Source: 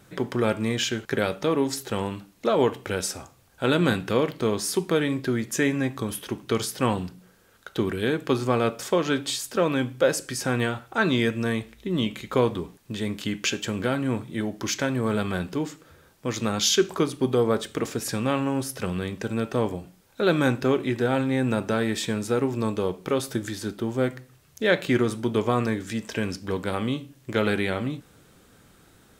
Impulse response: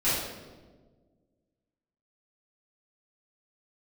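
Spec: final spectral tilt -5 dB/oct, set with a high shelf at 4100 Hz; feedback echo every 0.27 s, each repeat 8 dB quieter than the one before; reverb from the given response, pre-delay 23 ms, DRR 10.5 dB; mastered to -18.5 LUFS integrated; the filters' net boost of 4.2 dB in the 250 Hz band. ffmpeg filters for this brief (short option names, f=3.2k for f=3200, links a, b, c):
-filter_complex "[0:a]equalizer=f=250:t=o:g=5,highshelf=f=4.1k:g=3,aecho=1:1:270|540|810|1080|1350:0.398|0.159|0.0637|0.0255|0.0102,asplit=2[a][b];[1:a]atrim=start_sample=2205,adelay=23[c];[b][c]afir=irnorm=-1:irlink=0,volume=-23dB[d];[a][d]amix=inputs=2:normalize=0,volume=4dB"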